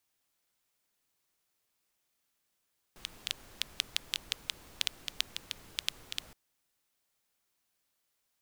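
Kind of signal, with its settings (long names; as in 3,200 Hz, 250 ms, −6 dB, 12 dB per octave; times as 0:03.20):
rain-like ticks over hiss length 3.37 s, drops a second 5.8, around 3,300 Hz, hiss −14 dB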